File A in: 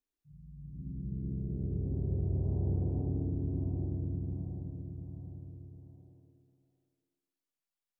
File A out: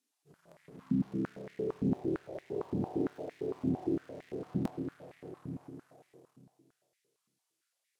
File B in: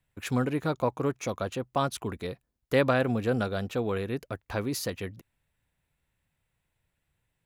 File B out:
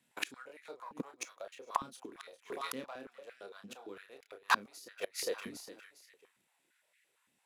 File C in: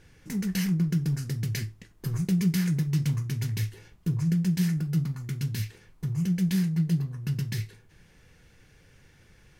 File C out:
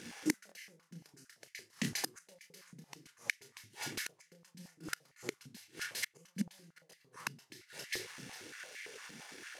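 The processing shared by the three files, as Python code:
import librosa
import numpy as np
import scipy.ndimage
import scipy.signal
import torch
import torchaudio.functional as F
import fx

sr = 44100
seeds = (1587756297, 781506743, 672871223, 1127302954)

y = scipy.signal.sosfilt(scipy.signal.butter(4, 12000.0, 'lowpass', fs=sr, output='sos'), x)
y = fx.high_shelf(y, sr, hz=5600.0, db=-3.0)
y = fx.leveller(y, sr, passes=1)
y = fx.high_shelf(y, sr, hz=2700.0, db=12.0)
y = fx.rider(y, sr, range_db=3, speed_s=0.5)
y = fx.doubler(y, sr, ms=30.0, db=-5.5)
y = fx.echo_feedback(y, sr, ms=404, feedback_pct=26, wet_db=-16.0)
y = fx.gate_flip(y, sr, shuts_db=-18.0, range_db=-30)
y = fx.buffer_glitch(y, sr, at_s=(0.47, 4.63, 6.89), block=1024, repeats=1)
y = fx.filter_held_highpass(y, sr, hz=8.8, low_hz=230.0, high_hz=2000.0)
y = F.gain(torch.from_numpy(y), 1.0).numpy()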